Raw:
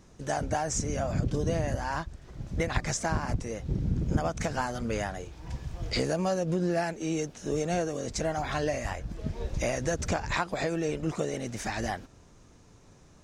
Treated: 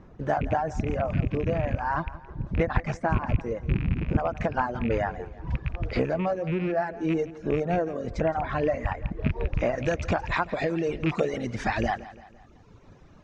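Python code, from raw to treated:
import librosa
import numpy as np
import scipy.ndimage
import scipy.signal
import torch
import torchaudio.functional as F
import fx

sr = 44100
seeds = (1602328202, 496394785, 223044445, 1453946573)

y = fx.rattle_buzz(x, sr, strikes_db=-30.0, level_db=-24.0)
y = fx.dereverb_blind(y, sr, rt60_s=1.2)
y = fx.lowpass(y, sr, hz=fx.steps((0.0, 1700.0), (9.78, 3000.0)), slope=12)
y = fx.rider(y, sr, range_db=3, speed_s=0.5)
y = fx.echo_feedback(y, sr, ms=169, feedback_pct=48, wet_db=-17)
y = y * librosa.db_to_amplitude(5.5)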